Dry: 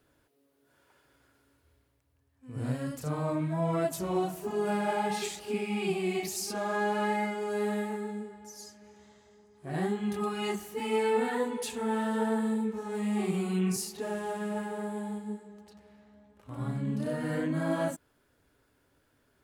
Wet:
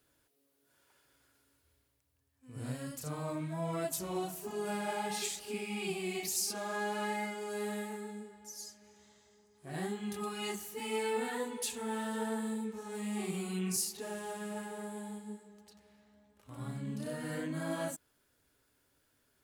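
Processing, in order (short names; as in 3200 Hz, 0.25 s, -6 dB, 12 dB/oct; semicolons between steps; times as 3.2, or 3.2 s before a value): high shelf 2900 Hz +11 dB; gain -7.5 dB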